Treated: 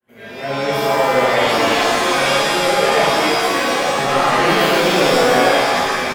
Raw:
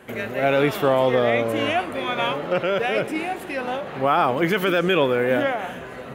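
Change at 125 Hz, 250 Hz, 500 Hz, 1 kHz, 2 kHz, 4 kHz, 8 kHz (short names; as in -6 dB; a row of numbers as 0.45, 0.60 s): +2.0, +3.5, +5.0, +8.5, +8.5, +12.0, +20.5 dB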